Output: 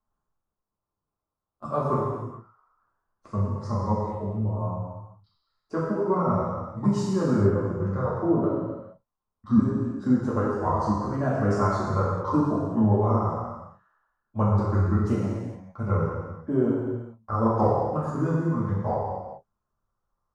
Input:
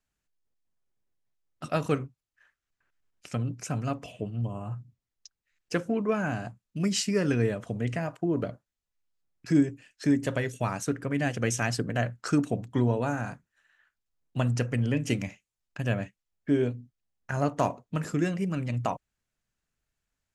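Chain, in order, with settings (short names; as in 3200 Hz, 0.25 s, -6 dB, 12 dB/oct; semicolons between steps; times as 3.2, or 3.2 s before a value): repeated pitch sweeps -5.5 st, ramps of 1.37 s; resonant high shelf 1600 Hz -14 dB, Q 3; non-linear reverb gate 0.48 s falling, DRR -7.5 dB; gain -3 dB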